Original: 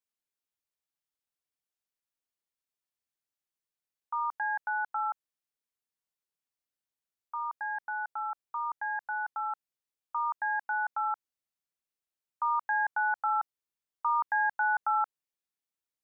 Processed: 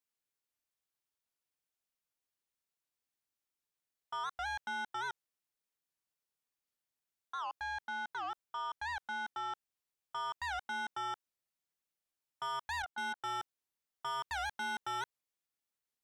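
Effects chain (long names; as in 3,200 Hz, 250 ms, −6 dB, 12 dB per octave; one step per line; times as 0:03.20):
0:12.83–0:13.23: output level in coarse steps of 14 dB
soft clipping −35.5 dBFS, distortion −7 dB
wow of a warped record 78 rpm, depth 250 cents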